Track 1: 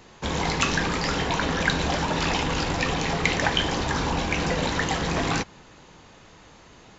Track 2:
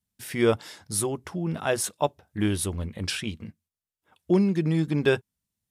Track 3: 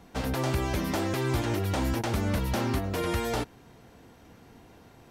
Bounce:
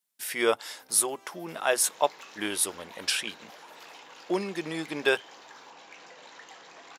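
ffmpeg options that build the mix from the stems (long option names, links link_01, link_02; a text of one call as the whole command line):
ffmpeg -i stem1.wav -i stem2.wav -i stem3.wav -filter_complex "[0:a]adelay=1600,volume=-9dB[link_01];[1:a]highshelf=frequency=10000:gain=5,volume=2.5dB,asplit=2[link_02][link_03];[2:a]highshelf=frequency=8900:gain=11.5,alimiter=level_in=1.5dB:limit=-24dB:level=0:latency=1,volume=-1.5dB,adelay=550,volume=-8.5dB[link_04];[link_03]apad=whole_len=249597[link_05];[link_04][link_05]sidechaincompress=threshold=-23dB:ratio=8:attack=16:release=1120[link_06];[link_01][link_06]amix=inputs=2:normalize=0,asoftclip=type=tanh:threshold=-26.5dB,acompressor=threshold=-49dB:ratio=2.5,volume=0dB[link_07];[link_02][link_07]amix=inputs=2:normalize=0,highpass=560" out.wav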